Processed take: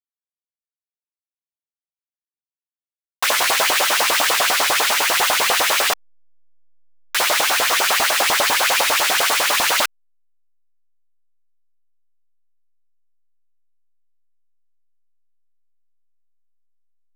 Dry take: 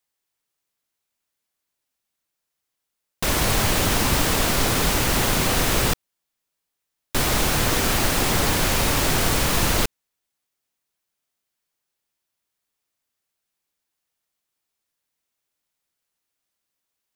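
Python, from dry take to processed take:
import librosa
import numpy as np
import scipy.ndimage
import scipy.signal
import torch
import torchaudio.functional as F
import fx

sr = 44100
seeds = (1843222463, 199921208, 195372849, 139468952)

y = fx.filter_lfo_highpass(x, sr, shape='saw_up', hz=10.0, low_hz=520.0, high_hz=3500.0, q=2.2)
y = fx.backlash(y, sr, play_db=-33.0)
y = y * librosa.db_to_amplitude(4.5)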